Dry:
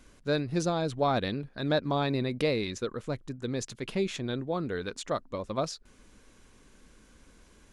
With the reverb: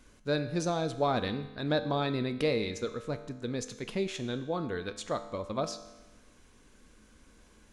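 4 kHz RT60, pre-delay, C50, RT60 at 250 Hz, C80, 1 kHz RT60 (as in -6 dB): 1.1 s, 4 ms, 12.0 dB, 1.1 s, 13.5 dB, 1.1 s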